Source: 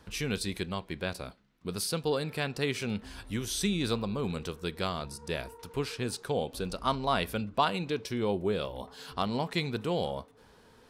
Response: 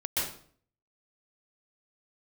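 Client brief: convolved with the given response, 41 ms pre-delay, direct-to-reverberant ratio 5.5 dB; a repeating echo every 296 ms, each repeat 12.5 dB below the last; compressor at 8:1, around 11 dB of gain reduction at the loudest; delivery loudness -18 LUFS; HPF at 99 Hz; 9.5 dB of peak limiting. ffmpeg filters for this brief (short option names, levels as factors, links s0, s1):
-filter_complex "[0:a]highpass=99,acompressor=threshold=0.0251:ratio=8,alimiter=level_in=1.68:limit=0.0631:level=0:latency=1,volume=0.596,aecho=1:1:296|592|888:0.237|0.0569|0.0137,asplit=2[s0][s1];[1:a]atrim=start_sample=2205,adelay=41[s2];[s1][s2]afir=irnorm=-1:irlink=0,volume=0.224[s3];[s0][s3]amix=inputs=2:normalize=0,volume=11.9"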